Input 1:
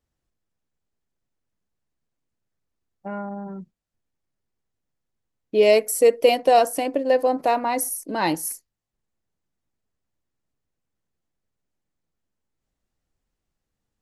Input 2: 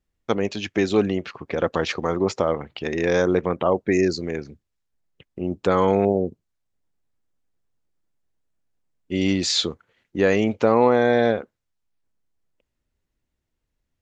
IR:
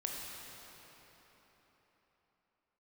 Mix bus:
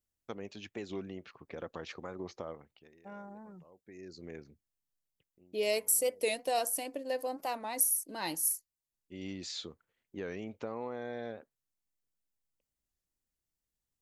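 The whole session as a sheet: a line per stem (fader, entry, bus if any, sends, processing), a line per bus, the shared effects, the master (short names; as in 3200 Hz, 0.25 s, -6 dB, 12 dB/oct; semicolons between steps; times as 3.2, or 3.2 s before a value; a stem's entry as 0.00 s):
-2.5 dB, 0.00 s, no send, pre-emphasis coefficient 0.8
-17.0 dB, 0.00 s, no send, compressor 2:1, threshold -22 dBFS, peak gain reduction 6.5 dB; auto duck -23 dB, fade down 0.55 s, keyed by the first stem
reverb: off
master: record warp 45 rpm, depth 160 cents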